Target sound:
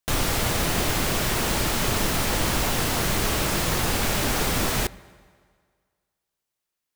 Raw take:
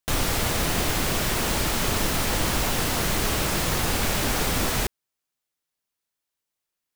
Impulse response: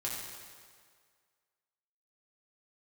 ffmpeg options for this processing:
-filter_complex "[0:a]asplit=2[link_01][link_02];[link_02]highpass=51[link_03];[1:a]atrim=start_sample=2205,highshelf=frequency=4100:gain=-10.5[link_04];[link_03][link_04]afir=irnorm=-1:irlink=0,volume=-17.5dB[link_05];[link_01][link_05]amix=inputs=2:normalize=0"

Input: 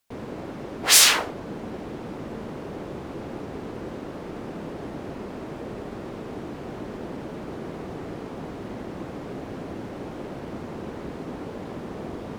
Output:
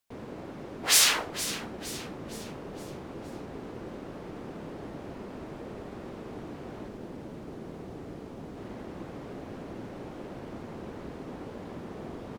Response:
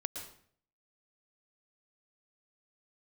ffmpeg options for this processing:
-filter_complex "[0:a]asettb=1/sr,asplit=3[link_01][link_02][link_03];[link_01]atrim=end=6.884[link_04];[link_02]atrim=start=6.88:end=8.57,asetpts=PTS-STARTPTS,afade=type=in:duration=0.004:curve=qsin,afade=type=out:start_time=1.686:duration=0.004:curve=qsin,equalizer=frequency=1600:width_type=o:width=2.9:gain=-4.5[link_05];[link_03]atrim=start=8.566[link_06];[link_04][link_05]acrossfade=duration=0.004:curve1=hsin:curve2=qsin[link_07];[link_07][link_06]acrossfade=duration=0.004:curve1=qsin:curve2=hsin,asplit=2[link_08][link_09];[link_09]asplit=5[link_10][link_11][link_12][link_13][link_14];[link_10]adelay=464,afreqshift=-85,volume=-13dB[link_15];[link_11]adelay=928,afreqshift=-170,volume=-19.6dB[link_16];[link_12]adelay=1392,afreqshift=-255,volume=-26.1dB[link_17];[link_13]adelay=1856,afreqshift=-340,volume=-32.7dB[link_18];[link_14]adelay=2320,afreqshift=-425,volume=-39.2dB[link_19];[link_15][link_16][link_17][link_18][link_19]amix=inputs=5:normalize=0[link_20];[link_08][link_20]amix=inputs=2:normalize=0,volume=-6dB"

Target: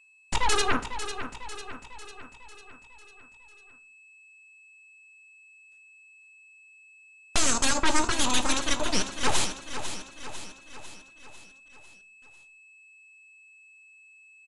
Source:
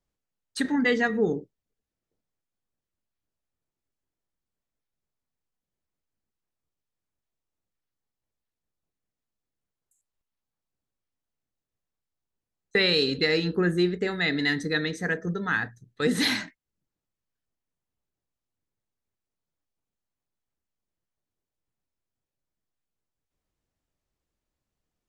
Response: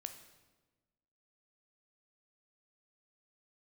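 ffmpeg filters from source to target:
-filter_complex "[0:a]equalizer=frequency=8200:width_type=o:width=0.76:gain=11.5,aeval=exprs='0.335*(cos(1*acos(clip(val(0)/0.335,-1,1)))-cos(1*PI/2))+0.133*(cos(3*acos(clip(val(0)/0.335,-1,1)))-cos(3*PI/2))+0.0668*(cos(8*acos(clip(val(0)/0.335,-1,1)))-cos(8*PI/2))':channel_layout=same,aeval=exprs='val(0)+0.00126*sin(2*PI*1500*n/s)':channel_layout=same,acrusher=bits=10:mix=0:aa=0.000001,aecho=1:1:864|1728|2592|3456|4320|5184:0.316|0.171|0.0922|0.0498|0.0269|0.0145,asplit=2[link_01][link_02];[1:a]atrim=start_sample=2205,asetrate=61740,aresample=44100[link_03];[link_02][link_03]afir=irnorm=-1:irlink=0,volume=6dB[link_04];[link_01][link_04]amix=inputs=2:normalize=0,asetrate=76440,aresample=44100,aresample=22050,aresample=44100,volume=-3dB"

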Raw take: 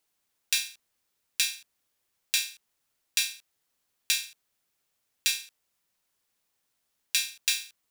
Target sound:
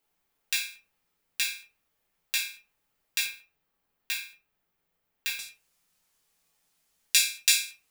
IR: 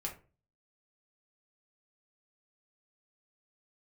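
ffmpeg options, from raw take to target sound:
-filter_complex "[0:a]asetnsamples=nb_out_samples=441:pad=0,asendcmd='3.26 equalizer g -13.5;5.39 equalizer g 3.5',equalizer=frequency=7600:width=0.44:gain=-7[link_01];[1:a]atrim=start_sample=2205[link_02];[link_01][link_02]afir=irnorm=-1:irlink=0,volume=4dB"

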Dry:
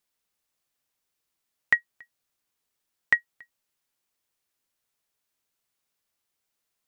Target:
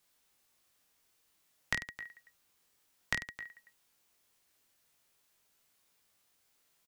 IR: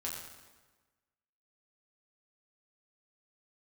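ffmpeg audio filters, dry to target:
-filter_complex "[0:a]acompressor=threshold=-30dB:ratio=6,asplit=2[link_01][link_02];[link_02]aecho=0:1:20|50|95|162.5|263.8:0.631|0.398|0.251|0.158|0.1[link_03];[link_01][link_03]amix=inputs=2:normalize=0,acrossover=split=270|3000[link_04][link_05][link_06];[link_05]acompressor=threshold=-47dB:ratio=2.5[link_07];[link_04][link_07][link_06]amix=inputs=3:normalize=0,volume=5.5dB"

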